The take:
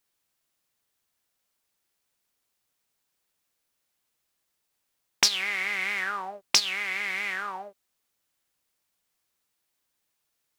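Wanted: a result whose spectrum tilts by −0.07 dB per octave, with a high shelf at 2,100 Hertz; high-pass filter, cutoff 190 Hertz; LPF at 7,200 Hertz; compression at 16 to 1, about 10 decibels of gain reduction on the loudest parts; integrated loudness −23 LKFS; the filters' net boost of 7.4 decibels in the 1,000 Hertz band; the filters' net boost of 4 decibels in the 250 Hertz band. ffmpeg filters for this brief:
ffmpeg -i in.wav -af "highpass=190,lowpass=7200,equalizer=frequency=250:width_type=o:gain=8,equalizer=frequency=1000:width_type=o:gain=8,highshelf=frequency=2100:gain=4,acompressor=threshold=-26dB:ratio=16,volume=7.5dB" out.wav

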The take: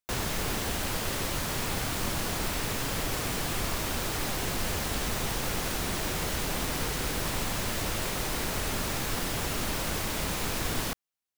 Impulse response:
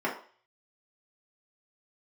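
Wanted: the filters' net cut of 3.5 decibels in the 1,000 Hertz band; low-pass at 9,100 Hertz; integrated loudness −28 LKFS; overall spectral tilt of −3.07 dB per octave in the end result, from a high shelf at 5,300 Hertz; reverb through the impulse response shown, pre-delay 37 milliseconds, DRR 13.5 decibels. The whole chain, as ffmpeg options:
-filter_complex "[0:a]lowpass=9100,equalizer=frequency=1000:width_type=o:gain=-5,highshelf=frequency=5300:gain=8.5,asplit=2[link_01][link_02];[1:a]atrim=start_sample=2205,adelay=37[link_03];[link_02][link_03]afir=irnorm=-1:irlink=0,volume=-23.5dB[link_04];[link_01][link_04]amix=inputs=2:normalize=0,volume=1.5dB"

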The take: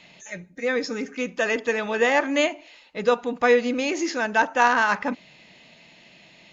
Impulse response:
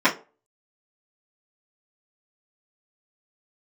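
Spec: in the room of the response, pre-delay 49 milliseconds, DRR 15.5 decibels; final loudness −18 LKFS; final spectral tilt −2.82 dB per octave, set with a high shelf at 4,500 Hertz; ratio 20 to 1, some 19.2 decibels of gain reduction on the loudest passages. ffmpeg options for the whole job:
-filter_complex "[0:a]highshelf=frequency=4500:gain=-6.5,acompressor=threshold=-33dB:ratio=20,asplit=2[link_01][link_02];[1:a]atrim=start_sample=2205,adelay=49[link_03];[link_02][link_03]afir=irnorm=-1:irlink=0,volume=-35.5dB[link_04];[link_01][link_04]amix=inputs=2:normalize=0,volume=20dB"

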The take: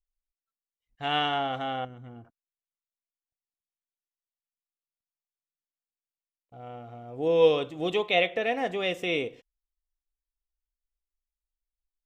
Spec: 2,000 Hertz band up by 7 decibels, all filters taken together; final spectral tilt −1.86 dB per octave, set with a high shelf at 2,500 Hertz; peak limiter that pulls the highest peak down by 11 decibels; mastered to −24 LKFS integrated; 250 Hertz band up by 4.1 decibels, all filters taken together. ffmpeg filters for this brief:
ffmpeg -i in.wav -af "equalizer=frequency=250:width_type=o:gain=5.5,equalizer=frequency=2000:width_type=o:gain=5.5,highshelf=frequency=2500:gain=6,volume=3dB,alimiter=limit=-12dB:level=0:latency=1" out.wav

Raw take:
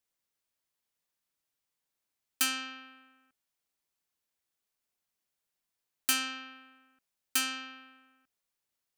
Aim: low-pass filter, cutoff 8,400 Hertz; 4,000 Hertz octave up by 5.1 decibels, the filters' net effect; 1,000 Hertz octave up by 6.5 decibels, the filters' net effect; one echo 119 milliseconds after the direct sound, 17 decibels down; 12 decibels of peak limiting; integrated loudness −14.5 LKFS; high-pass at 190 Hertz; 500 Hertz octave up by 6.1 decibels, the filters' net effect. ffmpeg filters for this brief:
ffmpeg -i in.wav -af "highpass=190,lowpass=8400,equalizer=frequency=500:width_type=o:gain=4.5,equalizer=frequency=1000:width_type=o:gain=8.5,equalizer=frequency=4000:width_type=o:gain=6.5,alimiter=limit=-23.5dB:level=0:latency=1,aecho=1:1:119:0.141,volume=21dB" out.wav

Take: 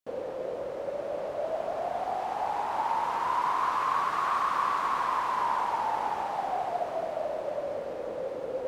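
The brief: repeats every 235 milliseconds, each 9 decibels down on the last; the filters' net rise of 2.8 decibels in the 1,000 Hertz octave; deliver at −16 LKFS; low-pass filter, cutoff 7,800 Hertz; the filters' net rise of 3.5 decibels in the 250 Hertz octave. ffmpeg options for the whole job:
ffmpeg -i in.wav -af "lowpass=7800,equalizer=frequency=250:width_type=o:gain=4.5,equalizer=frequency=1000:width_type=o:gain=3,aecho=1:1:235|470|705|940:0.355|0.124|0.0435|0.0152,volume=11dB" out.wav

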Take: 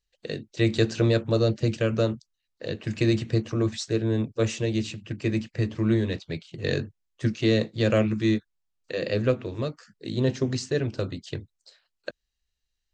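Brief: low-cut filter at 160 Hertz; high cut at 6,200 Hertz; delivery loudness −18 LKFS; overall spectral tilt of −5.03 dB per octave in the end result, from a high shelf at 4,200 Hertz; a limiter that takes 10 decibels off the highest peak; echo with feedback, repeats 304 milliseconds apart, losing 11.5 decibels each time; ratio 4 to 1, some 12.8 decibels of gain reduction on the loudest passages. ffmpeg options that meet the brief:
ffmpeg -i in.wav -af "highpass=160,lowpass=6200,highshelf=frequency=4200:gain=6.5,acompressor=threshold=-34dB:ratio=4,alimiter=level_in=4dB:limit=-24dB:level=0:latency=1,volume=-4dB,aecho=1:1:304|608|912:0.266|0.0718|0.0194,volume=21.5dB" out.wav

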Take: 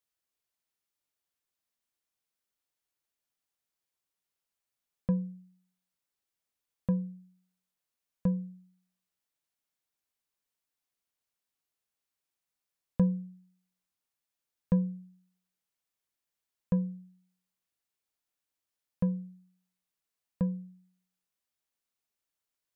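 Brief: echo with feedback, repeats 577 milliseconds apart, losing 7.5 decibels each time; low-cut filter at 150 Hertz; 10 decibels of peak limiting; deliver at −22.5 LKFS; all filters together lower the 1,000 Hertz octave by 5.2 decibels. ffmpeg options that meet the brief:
ffmpeg -i in.wav -af "highpass=150,equalizer=frequency=1000:width_type=o:gain=-5.5,alimiter=level_in=3dB:limit=-24dB:level=0:latency=1,volume=-3dB,aecho=1:1:577|1154|1731|2308|2885:0.422|0.177|0.0744|0.0312|0.0131,volume=19.5dB" out.wav

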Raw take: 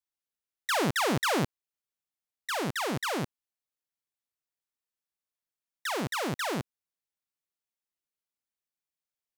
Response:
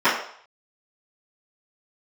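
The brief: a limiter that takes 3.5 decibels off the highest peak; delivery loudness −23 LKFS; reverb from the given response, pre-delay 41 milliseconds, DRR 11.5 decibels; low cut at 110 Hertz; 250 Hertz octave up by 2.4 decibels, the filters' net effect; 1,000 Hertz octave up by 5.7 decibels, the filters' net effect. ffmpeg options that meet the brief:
-filter_complex "[0:a]highpass=110,equalizer=frequency=250:width_type=o:gain=3,equalizer=frequency=1000:width_type=o:gain=7,alimiter=limit=-16.5dB:level=0:latency=1,asplit=2[link_01][link_02];[1:a]atrim=start_sample=2205,adelay=41[link_03];[link_02][link_03]afir=irnorm=-1:irlink=0,volume=-33.5dB[link_04];[link_01][link_04]amix=inputs=2:normalize=0,volume=5dB"

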